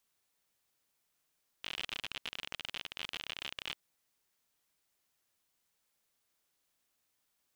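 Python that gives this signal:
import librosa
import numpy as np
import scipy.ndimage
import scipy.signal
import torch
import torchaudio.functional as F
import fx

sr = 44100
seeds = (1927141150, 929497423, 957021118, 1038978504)

y = fx.geiger_clicks(sr, seeds[0], length_s=2.13, per_s=57.0, level_db=-23.0)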